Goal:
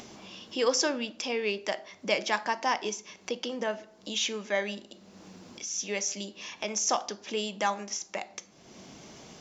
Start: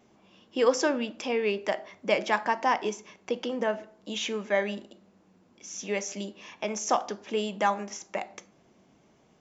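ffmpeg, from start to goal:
-af "equalizer=f=5.1k:t=o:w=1.6:g=11,acompressor=mode=upward:threshold=-30dB:ratio=2.5,volume=-4dB"

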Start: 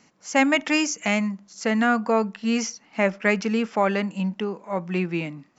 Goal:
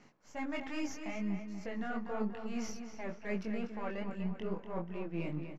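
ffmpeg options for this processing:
-filter_complex "[0:a]aeval=exprs='if(lt(val(0),0),0.447*val(0),val(0))':c=same,areverse,acompressor=threshold=-36dB:ratio=16,areverse,flanger=delay=19.5:depth=4.3:speed=2.4,aemphasis=mode=reproduction:type=75fm,asplit=2[a][b];[b]adelay=242,lowpass=f=4.3k:p=1,volume=-8dB,asplit=2[c][d];[d]adelay=242,lowpass=f=4.3k:p=1,volume=0.48,asplit=2[e][f];[f]adelay=242,lowpass=f=4.3k:p=1,volume=0.48,asplit=2[g][h];[h]adelay=242,lowpass=f=4.3k:p=1,volume=0.48,asplit=2[i][j];[j]adelay=242,lowpass=f=4.3k:p=1,volume=0.48,asplit=2[k][l];[l]adelay=242,lowpass=f=4.3k:p=1,volume=0.48[m];[a][c][e][g][i][k][m]amix=inputs=7:normalize=0,volume=3.5dB"

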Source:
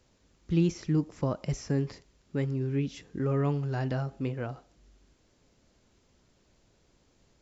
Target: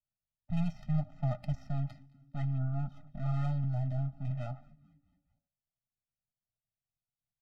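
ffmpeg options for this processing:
-filter_complex "[0:a]asplit=3[a][b][c];[a]afade=t=out:st=0.64:d=0.02[d];[b]highpass=f=83:w=0.5412,highpass=f=83:w=1.3066,afade=t=in:st=0.64:d=0.02,afade=t=out:st=1.4:d=0.02[e];[c]afade=t=in:st=1.4:d=0.02[f];[d][e][f]amix=inputs=3:normalize=0,asplit=2[g][h];[h]aeval=exprs='clip(val(0),-1,0.0168)':c=same,volume=-6.5dB[i];[g][i]amix=inputs=2:normalize=0,agate=range=-30dB:threshold=-50dB:ratio=16:detection=peak,aeval=exprs='max(val(0),0)':c=same,equalizer=f=125:t=o:w=1:g=9,equalizer=f=250:t=o:w=1:g=-7,equalizer=f=500:t=o:w=1:g=6,equalizer=f=4k:t=o:w=1:g=5,adynamicsmooth=sensitivity=6:basefreq=1.8k,asplit=5[j][k][l][m][n];[k]adelay=219,afreqshift=-140,volume=-24dB[o];[l]adelay=438,afreqshift=-280,volume=-28.4dB[p];[m]adelay=657,afreqshift=-420,volume=-32.9dB[q];[n]adelay=876,afreqshift=-560,volume=-37.3dB[r];[j][o][p][q][r]amix=inputs=5:normalize=0,flanger=delay=4.6:depth=3.4:regen=-63:speed=0.66:shape=triangular,asettb=1/sr,asplit=3[s][t][u];[s]atrim=end=2.584[v];[t]atrim=start=2.58:end=3.07,asetpts=PTS-STARTPTS,afade=t=in:d=0.004:c=qsin,afade=t=out:st=0.486:d=0.004:c=qsin,highshelf=f=1.7k:t=q:w=3:g=-7[w];[u]atrim=start=3.066[x];[v][w]acrossfade=d=0.004:c1=hsin:c2=qsin[y];[y][x]acrossfade=d=0.004:c1=qsin:c2=hsin,asettb=1/sr,asplit=3[z][aa][ab];[z]atrim=end=3.644[ac];[aa]atrim=start=3.64:end=4.31,asetpts=PTS-STARTPTS,afade=t=in:d=0.004:c=qsin,afade=t=out:st=0.666:d=0.004:c=qsin,acrossover=split=500[ad][ae];[ae]acompressor=threshold=-54dB:ratio=2[af];[ad][af]amix=inputs=2:normalize=0[ag];[ab]atrim=start=4.306[ah];[ac][ag]acrossfade=d=0.004:c1=hsin:c2=qsin[ai];[ai][ah]acrossfade=d=0.004:c1=qsin:c2=hsin,afftfilt=real='re*eq(mod(floor(b*sr/1024/300),2),0)':imag='im*eq(mod(floor(b*sr/1024/300),2),0)':win_size=1024:overlap=0.75"

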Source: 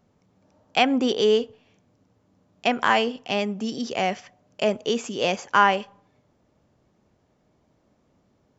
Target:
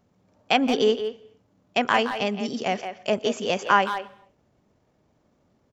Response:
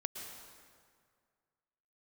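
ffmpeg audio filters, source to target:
-filter_complex "[0:a]atempo=1.5,asplit=2[a][b];[b]adelay=170,highpass=300,lowpass=3.4k,asoftclip=type=hard:threshold=-13dB,volume=-8dB[c];[a][c]amix=inputs=2:normalize=0,asplit=2[d][e];[1:a]atrim=start_sample=2205,afade=t=out:st=0.35:d=0.01,atrim=end_sample=15876[f];[e][f]afir=irnorm=-1:irlink=0,volume=-15.5dB[g];[d][g]amix=inputs=2:normalize=0,volume=-1.5dB"

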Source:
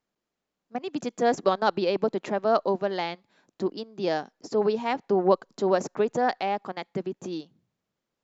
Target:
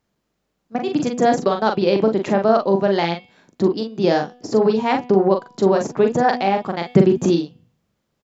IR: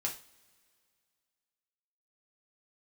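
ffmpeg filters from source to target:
-filter_complex "[0:a]equalizer=f=78:w=0.39:g=9,bandreject=f=246:t=h:w=4,bandreject=f=492:t=h:w=4,bandreject=f=738:t=h:w=4,bandreject=f=984:t=h:w=4,bandreject=f=1.23k:t=h:w=4,bandreject=f=1.476k:t=h:w=4,bandreject=f=1.722k:t=h:w=4,bandreject=f=1.968k:t=h:w=4,bandreject=f=2.214k:t=h:w=4,bandreject=f=2.46k:t=h:w=4,bandreject=f=2.706k:t=h:w=4,bandreject=f=2.952k:t=h:w=4,bandreject=f=3.198k:t=h:w=4,bandreject=f=3.444k:t=h:w=4,bandreject=f=3.69k:t=h:w=4,bandreject=f=3.936k:t=h:w=4,bandreject=f=4.182k:t=h:w=4,bandreject=f=4.428k:t=h:w=4,bandreject=f=4.674k:t=h:w=4,bandreject=f=4.92k:t=h:w=4,alimiter=limit=-14dB:level=0:latency=1:release=370,asplit=3[a][b][c];[a]afade=t=out:st=6.84:d=0.02[d];[b]acontrast=70,afade=t=in:st=6.84:d=0.02,afade=t=out:st=7.34:d=0.02[e];[c]afade=t=in:st=7.34:d=0.02[f];[d][e][f]amix=inputs=3:normalize=0,asplit=2[g][h];[h]aecho=0:1:41|54:0.562|0.126[i];[g][i]amix=inputs=2:normalize=0,volume=7.5dB"

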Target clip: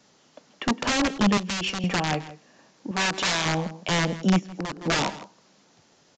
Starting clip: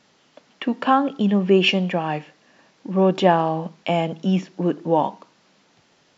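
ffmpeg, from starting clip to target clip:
-filter_complex "[0:a]equalizer=f=5.7k:w=0.38:g=-7,acrossover=split=190|3300[a][b][c];[b]aeval=exprs='(mod(7.5*val(0)+1,2)-1)/7.5':c=same[d];[c]crystalizer=i=3.5:c=0[e];[a][d][e]amix=inputs=3:normalize=0,asplit=2[f][g];[g]adelay=163.3,volume=-16dB,highshelf=f=4k:g=-3.67[h];[f][h]amix=inputs=2:normalize=0,asplit=3[i][j][k];[i]afade=t=out:st=4.38:d=0.02[l];[j]acompressor=threshold=-28dB:ratio=10,afade=t=in:st=4.38:d=0.02,afade=t=out:st=4.82:d=0.02[m];[k]afade=t=in:st=4.82:d=0.02[n];[l][m][n]amix=inputs=3:normalize=0,aresample=16000,aresample=44100,asettb=1/sr,asplit=3[o][p][q];[o]atrim=end=1.374[r];[p]atrim=start=1.37:end=1.84,asetpts=PTS-STARTPTS,afade=t=in:d=0.004:c=qsin,afade=t=out:st=0.466:d=0.004:c=qsin,acrossover=split=170|2600[s][t][u];[s]acompressor=threshold=-40dB:ratio=4[v];[t]acompressor=threshold=-34dB:ratio=4[w];[u]acompressor=threshold=-29dB:ratio=4[x];[v][w][x]amix=inputs=3:normalize=0[y];[q]atrim=start=1.836[z];[r][y]acrossfade=d=0.004:c1=hsin:c2=qsin[aa];[aa][z]acrossfade=d=0.004:c1=qsin:c2=hsin,asettb=1/sr,asplit=3[ab][ac][ad];[ab]atrim=end=2.914[ae];[ac]atrim=start=2.91:end=3.46,asetpts=PTS-STARTPTS,afade=t=in:d=0.004:c=qsin,afade=t=out:st=0.546:d=0.004:c=qsin,lowshelf=f=330:g=-11.5[af];[ad]atrim=start=3.456[ag];[ae][af]acrossfade=d=0.004:c1=hsin:c2=qsin[ah];[ah][ag]acrossfade=d=0.004:c1=qsin:c2=hsin"

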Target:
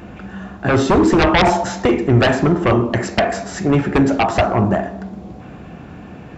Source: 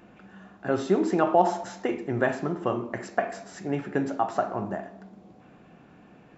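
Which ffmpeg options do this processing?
-af "aeval=exprs='0.422*sin(PI/2*4.47*val(0)/0.422)':c=same,equalizer=f=66:t=o:w=1.5:g=14,volume=-2dB"

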